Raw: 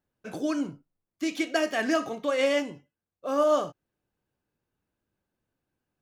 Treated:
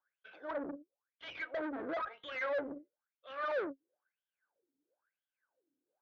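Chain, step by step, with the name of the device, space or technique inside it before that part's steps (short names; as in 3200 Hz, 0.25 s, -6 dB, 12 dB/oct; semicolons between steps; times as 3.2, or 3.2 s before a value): wah-wah guitar rig (wah 1 Hz 270–3300 Hz, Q 12; tube stage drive 51 dB, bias 0.7; speaker cabinet 82–3400 Hz, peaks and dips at 85 Hz -10 dB, 140 Hz -10 dB, 220 Hz -8 dB, 540 Hz +6 dB, 1500 Hz +9 dB, 2800 Hz -9 dB); gain +14.5 dB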